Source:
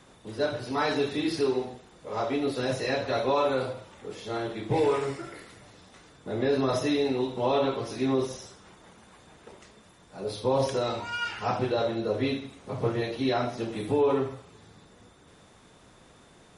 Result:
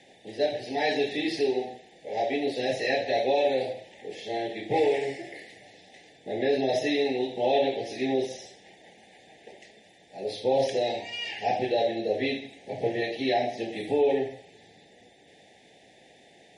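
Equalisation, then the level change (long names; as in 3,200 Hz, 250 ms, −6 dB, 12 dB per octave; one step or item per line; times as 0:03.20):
elliptic band-stop filter 800–1,800 Hz, stop band 40 dB
resonant band-pass 1,400 Hz, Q 0.5
+6.5 dB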